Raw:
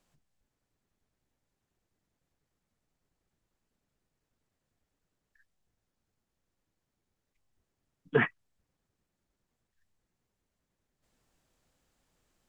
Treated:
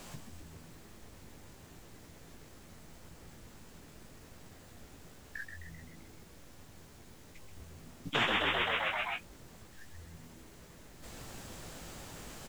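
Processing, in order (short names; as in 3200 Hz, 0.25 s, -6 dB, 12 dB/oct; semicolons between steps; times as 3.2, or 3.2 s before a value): doubler 18 ms -5.5 dB; frequency-shifting echo 0.13 s, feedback 58%, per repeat +81 Hz, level -7.5 dB; spectral compressor 10:1; gain -5 dB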